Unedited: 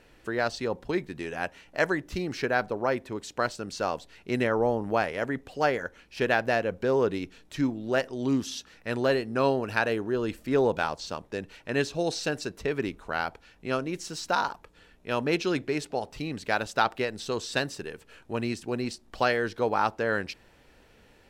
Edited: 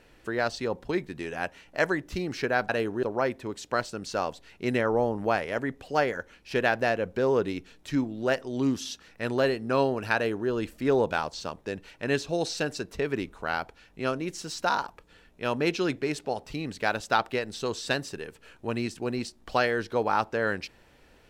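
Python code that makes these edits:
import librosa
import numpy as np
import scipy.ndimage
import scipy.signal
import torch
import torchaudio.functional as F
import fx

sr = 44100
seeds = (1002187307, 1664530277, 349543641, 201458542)

y = fx.edit(x, sr, fx.duplicate(start_s=9.81, length_s=0.34, to_s=2.69), tone=tone)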